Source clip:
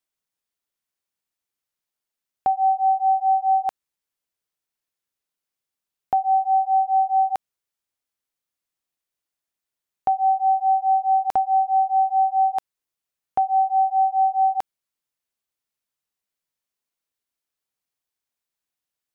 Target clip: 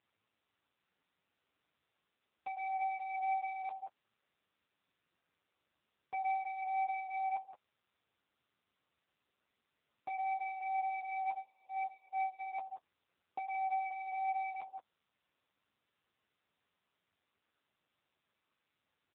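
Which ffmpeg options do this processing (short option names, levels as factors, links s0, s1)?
-filter_complex "[0:a]acompressor=threshold=0.1:ratio=16,alimiter=level_in=1.06:limit=0.0631:level=0:latency=1:release=156,volume=0.944,asplit=2[s0][s1];[s1]aecho=0:1:175:0.15[s2];[s0][s2]amix=inputs=2:normalize=0,asoftclip=type=tanh:threshold=0.0158,lowshelf=f=460:g=4,flanger=delay=8.6:depth=5.2:regen=30:speed=0.25:shape=triangular,equalizer=f=1200:w=2.5:g=4.5,asplit=3[s3][s4][s5];[s3]afade=t=out:st=11.33:d=0.02[s6];[s4]agate=range=0.0447:threshold=0.0126:ratio=16:detection=peak,afade=t=in:st=11.33:d=0.02,afade=t=out:st=12.38:d=0.02[s7];[s5]afade=t=in:st=12.38:d=0.02[s8];[s6][s7][s8]amix=inputs=3:normalize=0,volume=1.78" -ar 8000 -c:a libopencore_amrnb -b:a 6700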